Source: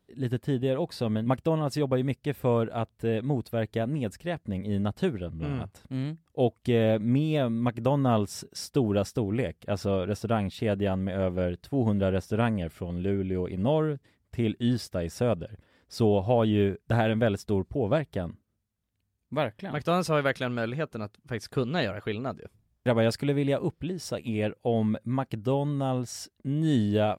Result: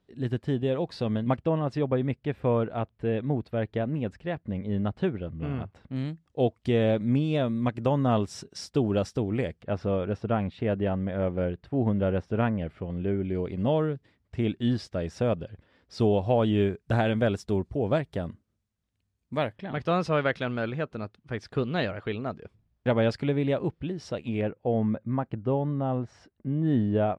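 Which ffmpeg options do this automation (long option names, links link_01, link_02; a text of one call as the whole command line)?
ffmpeg -i in.wav -af "asetnsamples=nb_out_samples=441:pad=0,asendcmd='1.37 lowpass f 2900;5.96 lowpass f 6400;9.62 lowpass f 2500;13.25 lowpass f 5000;16 lowpass f 8300;19.56 lowpass f 4000;24.41 lowpass f 1700',lowpass=5400" out.wav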